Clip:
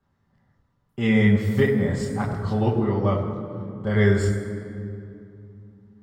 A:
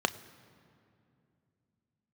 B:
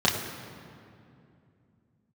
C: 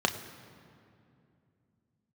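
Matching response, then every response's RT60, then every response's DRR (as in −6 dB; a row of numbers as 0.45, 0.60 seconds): B; 2.6, 2.6, 2.6 seconds; 11.0, −5.0, 5.0 decibels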